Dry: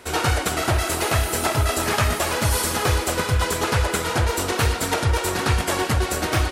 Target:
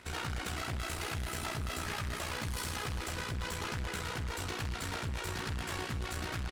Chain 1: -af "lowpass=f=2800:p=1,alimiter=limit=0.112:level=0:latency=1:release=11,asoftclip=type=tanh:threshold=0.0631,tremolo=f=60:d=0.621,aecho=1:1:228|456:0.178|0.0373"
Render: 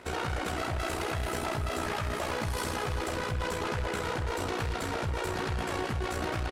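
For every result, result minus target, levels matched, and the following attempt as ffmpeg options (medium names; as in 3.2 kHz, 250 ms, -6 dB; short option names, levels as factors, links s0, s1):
500 Hz band +5.5 dB; saturation: distortion -7 dB
-af "lowpass=f=2800:p=1,equalizer=f=520:w=0.52:g=-11,alimiter=limit=0.112:level=0:latency=1:release=11,asoftclip=type=tanh:threshold=0.0631,tremolo=f=60:d=0.621,aecho=1:1:228|456:0.178|0.0373"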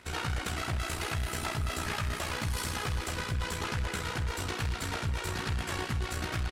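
saturation: distortion -7 dB
-af "lowpass=f=2800:p=1,equalizer=f=520:w=0.52:g=-11,alimiter=limit=0.112:level=0:latency=1:release=11,asoftclip=type=tanh:threshold=0.0266,tremolo=f=60:d=0.621,aecho=1:1:228|456:0.178|0.0373"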